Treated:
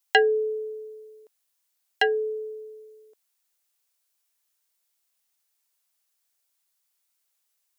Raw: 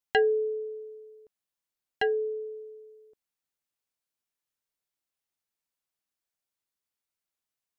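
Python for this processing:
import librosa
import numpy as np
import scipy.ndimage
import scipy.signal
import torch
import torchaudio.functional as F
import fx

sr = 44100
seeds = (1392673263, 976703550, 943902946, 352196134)

y = scipy.signal.sosfilt(scipy.signal.butter(2, 490.0, 'highpass', fs=sr, output='sos'), x)
y = fx.high_shelf(y, sr, hz=4200.0, db=9.0)
y = y * 10.0 ** (6.5 / 20.0)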